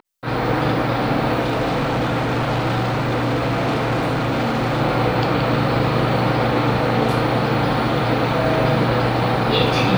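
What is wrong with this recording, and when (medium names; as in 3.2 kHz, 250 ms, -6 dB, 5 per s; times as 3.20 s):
1.40–4.82 s: clipped -16.5 dBFS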